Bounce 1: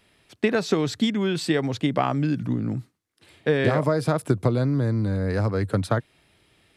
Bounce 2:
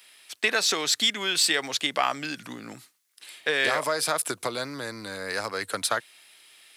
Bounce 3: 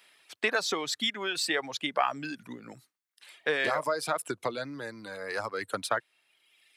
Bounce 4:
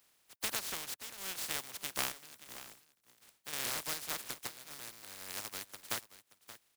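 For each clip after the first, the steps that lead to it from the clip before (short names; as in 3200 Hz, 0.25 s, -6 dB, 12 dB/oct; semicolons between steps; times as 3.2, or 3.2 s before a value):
tilt +3 dB/oct; in parallel at -8.5 dB: soft clip -25.5 dBFS, distortion -8 dB; on the sum: HPF 1100 Hz 6 dB/oct; gain +2.5 dB
reverb removal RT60 1.4 s; high shelf 2900 Hz -11.5 dB
spectral contrast lowered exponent 0.12; chopper 0.85 Hz, depth 65%, duty 80%; echo 0.577 s -15 dB; gain -8.5 dB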